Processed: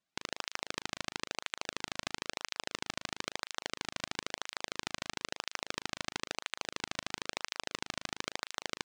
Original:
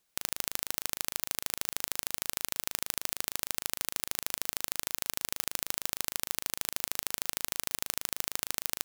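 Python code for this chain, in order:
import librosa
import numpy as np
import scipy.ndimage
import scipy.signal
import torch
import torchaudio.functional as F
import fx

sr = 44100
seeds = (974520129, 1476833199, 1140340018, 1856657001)

y = fx.tracing_dist(x, sr, depth_ms=0.02)
y = fx.air_absorb(y, sr, metres=100.0)
y = fx.flanger_cancel(y, sr, hz=1.0, depth_ms=2.5)
y = y * librosa.db_to_amplitude(-3.0)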